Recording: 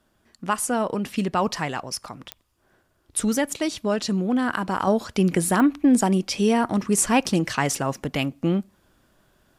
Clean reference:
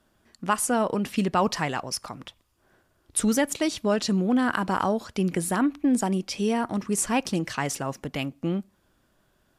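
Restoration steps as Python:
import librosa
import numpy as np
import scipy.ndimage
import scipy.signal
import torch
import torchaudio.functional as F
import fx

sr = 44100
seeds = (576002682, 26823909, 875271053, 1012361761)

y = fx.fix_declick_ar(x, sr, threshold=10.0)
y = fx.gain(y, sr, db=fx.steps((0.0, 0.0), (4.87, -5.0)))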